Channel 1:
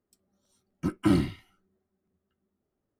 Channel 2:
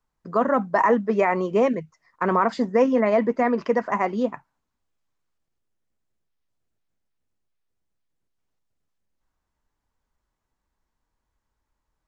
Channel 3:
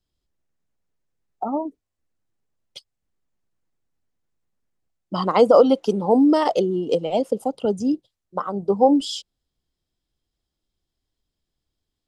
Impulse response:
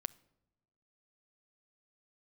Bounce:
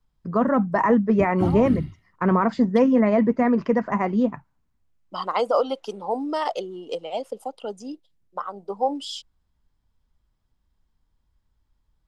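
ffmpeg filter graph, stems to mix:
-filter_complex "[0:a]adelay=350,volume=-10dB,asplit=2[link_01][link_02];[link_02]volume=-3dB[link_03];[1:a]volume=-2dB[link_04];[2:a]highpass=760,deesser=0.5,volume=-2dB[link_05];[link_03]aecho=0:1:248:1[link_06];[link_01][link_04][link_05][link_06]amix=inputs=4:normalize=0,bass=frequency=250:gain=13,treble=frequency=4000:gain=-4"

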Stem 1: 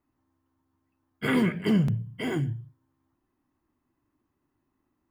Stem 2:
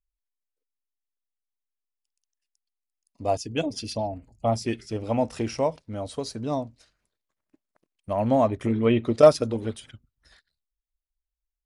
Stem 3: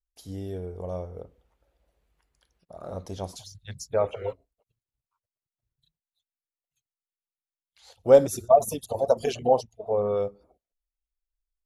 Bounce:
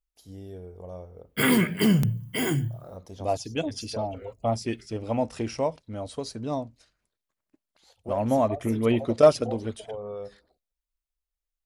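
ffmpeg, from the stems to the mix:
ffmpeg -i stem1.wav -i stem2.wav -i stem3.wav -filter_complex "[0:a]aemphasis=mode=production:type=75fm,agate=range=-19dB:threshold=-59dB:ratio=16:detection=peak,adelay=150,volume=3dB[link_01];[1:a]volume=-2dB[link_02];[2:a]acompressor=threshold=-26dB:ratio=6,volume=-6.5dB[link_03];[link_01][link_02][link_03]amix=inputs=3:normalize=0" out.wav

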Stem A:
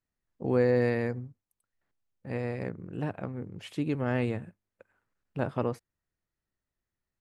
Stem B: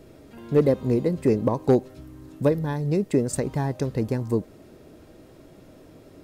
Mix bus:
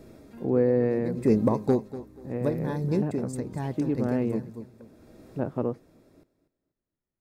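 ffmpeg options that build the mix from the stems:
ffmpeg -i stem1.wav -i stem2.wav -filter_complex "[0:a]lowpass=frequency=1400:poles=1,equalizer=frequency=300:width_type=o:width=2.6:gain=9,volume=-5dB,asplit=2[link_01][link_02];[1:a]bandreject=frequency=3000:width=5.1,tremolo=f=0.74:d=0.67,equalizer=frequency=220:width_type=o:width=0.3:gain=6,volume=-1dB,asplit=2[link_03][link_04];[link_04]volume=-15dB[link_05];[link_02]apad=whole_len=274869[link_06];[link_03][link_06]sidechaincompress=threshold=-28dB:ratio=8:attack=7.6:release=443[link_07];[link_05]aecho=0:1:242|484|726|968:1|0.29|0.0841|0.0244[link_08];[link_01][link_07][link_08]amix=inputs=3:normalize=0" out.wav

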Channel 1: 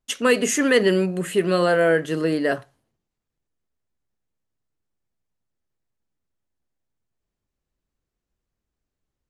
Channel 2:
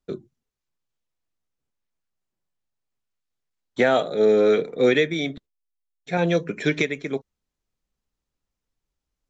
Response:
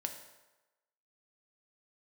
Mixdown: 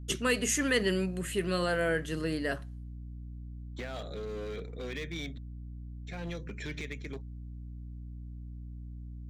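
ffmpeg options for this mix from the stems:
-filter_complex "[0:a]aeval=exprs='val(0)+0.0178*(sin(2*PI*60*n/s)+sin(2*PI*2*60*n/s)/2+sin(2*PI*3*60*n/s)/3+sin(2*PI*4*60*n/s)/4+sin(2*PI*5*60*n/s)/5)':channel_layout=same,volume=-5dB,asplit=2[link_01][link_02];[1:a]alimiter=limit=-17dB:level=0:latency=1:release=60,asoftclip=type=hard:threshold=-21.5dB,volume=-0.5dB[link_03];[link_02]apad=whole_len=410089[link_04];[link_03][link_04]sidechaingate=range=-7dB:threshold=-34dB:ratio=16:detection=peak[link_05];[link_01][link_05]amix=inputs=2:normalize=0,equalizer=frequency=550:width_type=o:width=2.9:gain=-7.5"

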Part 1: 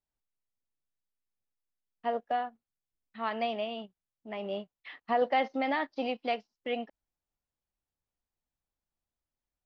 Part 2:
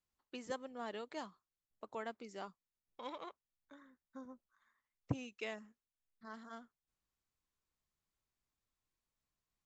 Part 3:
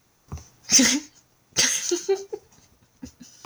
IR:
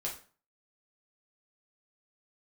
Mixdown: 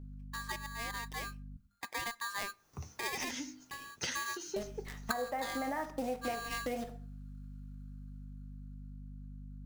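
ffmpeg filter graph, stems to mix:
-filter_complex "[0:a]lowpass=frequency=1900:width=0.5412,lowpass=frequency=1900:width=1.3066,acrusher=bits=8:dc=4:mix=0:aa=0.000001,aeval=exprs='val(0)+0.00355*(sin(2*PI*50*n/s)+sin(2*PI*2*50*n/s)/2+sin(2*PI*3*50*n/s)/3+sin(2*PI*4*50*n/s)/4+sin(2*PI*5*50*n/s)/5)':channel_layout=same,volume=0.5dB,asplit=3[link_01][link_02][link_03];[link_01]atrim=end=1.57,asetpts=PTS-STARTPTS,afade=type=out:start_time=1.566:duration=0.004:curve=hsin[link_04];[link_02]atrim=start=1.57:end=4.56,asetpts=PTS-STARTPTS,volume=0[link_05];[link_03]atrim=start=4.56,asetpts=PTS-STARTPTS,afade=type=in:duration=0.004:curve=hsin[link_06];[link_04][link_05][link_06]concat=n=3:v=0:a=1,asplit=2[link_07][link_08];[link_08]volume=-4.5dB[link_09];[1:a]dynaudnorm=framelen=340:gausssize=13:maxgain=10dB,equalizer=frequency=200:width_type=o:width=0.87:gain=10,aeval=exprs='val(0)*sgn(sin(2*PI*1400*n/s))':channel_layout=same,volume=-0.5dB,asplit=3[link_10][link_11][link_12];[link_11]volume=-21dB[link_13];[2:a]acrossover=split=3300[link_14][link_15];[link_15]acompressor=threshold=-31dB:ratio=4:attack=1:release=60[link_16];[link_14][link_16]amix=inputs=2:normalize=0,bandreject=frequency=51.15:width_type=h:width=4,bandreject=frequency=102.3:width_type=h:width=4,bandreject=frequency=153.45:width_type=h:width=4,bandreject=frequency=204.6:width_type=h:width=4,bandreject=frequency=255.75:width_type=h:width=4,bandreject=frequency=306.9:width_type=h:width=4,acrossover=split=120|3000[link_17][link_18][link_19];[link_18]acompressor=threshold=-28dB:ratio=6[link_20];[link_17][link_20][link_19]amix=inputs=3:normalize=0,adelay=2450,volume=-8.5dB,asplit=2[link_21][link_22];[link_22]volume=-15dB[link_23];[link_12]apad=whole_len=260464[link_24];[link_21][link_24]sidechaincompress=threshold=-46dB:ratio=8:attack=44:release=212[link_25];[3:a]atrim=start_sample=2205[link_26];[link_09][link_13][link_23]amix=inputs=3:normalize=0[link_27];[link_27][link_26]afir=irnorm=-1:irlink=0[link_28];[link_07][link_10][link_25][link_28]amix=inputs=4:normalize=0,acompressor=threshold=-33dB:ratio=8"

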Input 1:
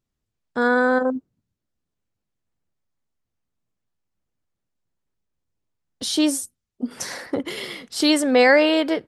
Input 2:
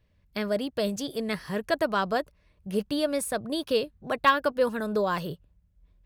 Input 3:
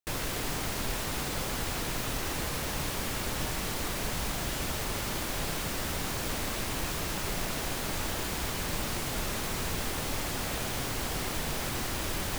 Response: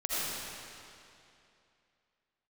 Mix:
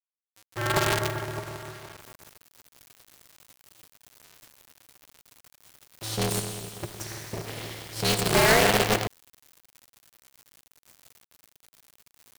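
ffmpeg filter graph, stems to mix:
-filter_complex "[0:a]volume=-10dB,asplit=2[link_01][link_02];[link_02]volume=-6.5dB[link_03];[1:a]alimiter=limit=-20dB:level=0:latency=1:release=27,acompressor=threshold=-41dB:ratio=3,bandpass=frequency=2400:width_type=q:width=0.6:csg=0,volume=-3.5dB[link_04];[2:a]equalizer=frequency=14000:width=4:gain=7.5,adelay=1900,volume=-17dB[link_05];[link_04][link_05]amix=inputs=2:normalize=0,alimiter=level_in=18dB:limit=-24dB:level=0:latency=1:release=20,volume=-18dB,volume=0dB[link_06];[3:a]atrim=start_sample=2205[link_07];[link_03][link_07]afir=irnorm=-1:irlink=0[link_08];[link_01][link_06][link_08]amix=inputs=3:normalize=0,highshelf=frequency=4300:gain=4,acrusher=bits=4:dc=4:mix=0:aa=0.000001,aeval=exprs='val(0)*sgn(sin(2*PI*110*n/s))':channel_layout=same"

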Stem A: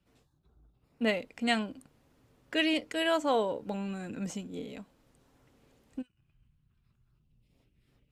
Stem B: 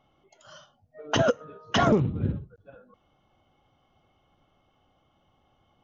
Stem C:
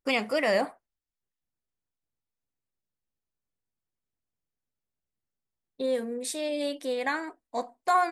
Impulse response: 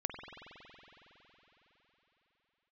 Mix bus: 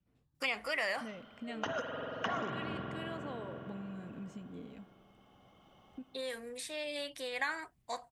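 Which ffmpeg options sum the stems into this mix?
-filter_complex "[0:a]bass=frequency=250:gain=13,treble=frequency=4000:gain=-8,volume=-12dB,asplit=3[link_01][link_02][link_03];[link_02]volume=-17.5dB[link_04];[1:a]acrossover=split=180|1900[link_05][link_06][link_07];[link_05]acompressor=threshold=-38dB:ratio=4[link_08];[link_06]acompressor=threshold=-27dB:ratio=4[link_09];[link_07]acompressor=threshold=-42dB:ratio=4[link_10];[link_08][link_09][link_10]amix=inputs=3:normalize=0,adelay=500,volume=2.5dB,asplit=2[link_11][link_12];[link_12]volume=-6.5dB[link_13];[2:a]tiltshelf=frequency=900:gain=-10,adelay=350,volume=-4.5dB[link_14];[link_03]apad=whole_len=279220[link_15];[link_11][link_15]sidechaincompress=threshold=-50dB:ratio=8:attack=16:release=1410[link_16];[link_01][link_16]amix=inputs=2:normalize=0,acompressor=threshold=-40dB:ratio=6,volume=0dB[link_17];[3:a]atrim=start_sample=2205[link_18];[link_04][link_13]amix=inputs=2:normalize=0[link_19];[link_19][link_18]afir=irnorm=-1:irlink=0[link_20];[link_14][link_17][link_20]amix=inputs=3:normalize=0,lowshelf=frequency=110:gain=-9.5,acrossover=split=980|2600[link_21][link_22][link_23];[link_21]acompressor=threshold=-39dB:ratio=4[link_24];[link_22]acompressor=threshold=-34dB:ratio=4[link_25];[link_23]acompressor=threshold=-48dB:ratio=4[link_26];[link_24][link_25][link_26]amix=inputs=3:normalize=0"

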